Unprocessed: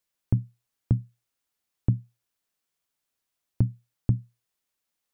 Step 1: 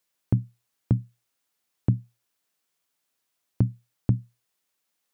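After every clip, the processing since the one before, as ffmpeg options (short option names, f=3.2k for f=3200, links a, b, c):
-af "highpass=f=140:p=1,volume=4.5dB"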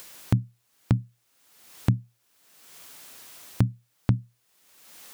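-af "acompressor=mode=upward:threshold=-22dB:ratio=2.5"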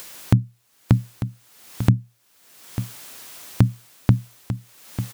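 -af "aecho=1:1:896:0.282,volume=6dB"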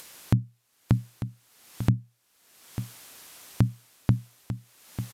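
-af "aresample=32000,aresample=44100,volume=-6dB"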